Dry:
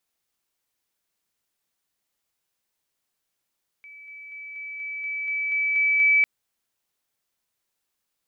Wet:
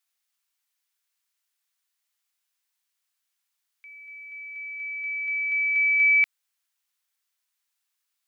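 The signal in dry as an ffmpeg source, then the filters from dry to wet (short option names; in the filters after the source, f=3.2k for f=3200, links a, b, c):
-f lavfi -i "aevalsrc='pow(10,(-42+3*floor(t/0.24))/20)*sin(2*PI*2300*t)':d=2.4:s=44100"
-af "highpass=1.2k"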